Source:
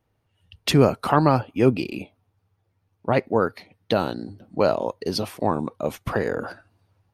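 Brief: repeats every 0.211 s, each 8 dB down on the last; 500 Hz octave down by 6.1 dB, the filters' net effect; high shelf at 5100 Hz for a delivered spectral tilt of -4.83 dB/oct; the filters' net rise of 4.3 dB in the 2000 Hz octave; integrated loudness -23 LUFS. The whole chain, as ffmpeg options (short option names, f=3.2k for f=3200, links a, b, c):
-af "equalizer=f=500:t=o:g=-8,equalizer=f=2k:t=o:g=5,highshelf=f=5.1k:g=8.5,aecho=1:1:211|422|633|844|1055:0.398|0.159|0.0637|0.0255|0.0102,volume=1.5dB"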